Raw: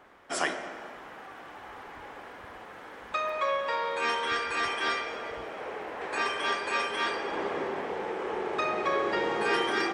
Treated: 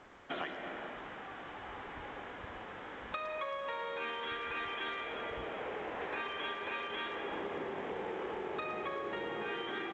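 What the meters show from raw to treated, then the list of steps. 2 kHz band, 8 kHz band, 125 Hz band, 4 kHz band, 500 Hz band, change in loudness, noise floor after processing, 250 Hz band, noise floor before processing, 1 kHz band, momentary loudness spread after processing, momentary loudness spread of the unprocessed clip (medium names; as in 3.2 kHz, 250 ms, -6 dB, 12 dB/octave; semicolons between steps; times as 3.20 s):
-8.5 dB, under -25 dB, -3.0 dB, -8.5 dB, -8.0 dB, -9.5 dB, -47 dBFS, -7.0 dB, -46 dBFS, -9.5 dB, 8 LU, 17 LU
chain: bass shelf 330 Hz +8.5 dB; resampled via 8 kHz; treble shelf 2.2 kHz +7 dB; compression 10:1, threshold -32 dBFS, peak gain reduction 13 dB; speakerphone echo 110 ms, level -12 dB; trim -4 dB; A-law 128 kbps 16 kHz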